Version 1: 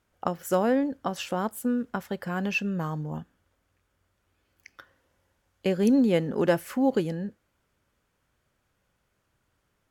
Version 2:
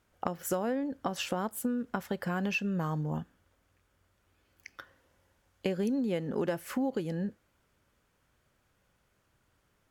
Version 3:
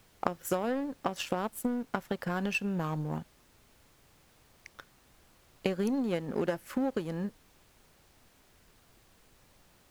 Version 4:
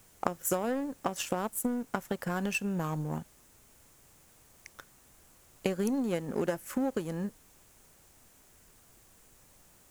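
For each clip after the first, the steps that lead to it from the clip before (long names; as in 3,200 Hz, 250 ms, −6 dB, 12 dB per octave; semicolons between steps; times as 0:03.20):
downward compressor 6 to 1, threshold −30 dBFS, peak gain reduction 12.5 dB; level +1.5 dB
power curve on the samples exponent 1.4; background noise pink −68 dBFS; level +5.5 dB
high shelf with overshoot 5,600 Hz +6.5 dB, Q 1.5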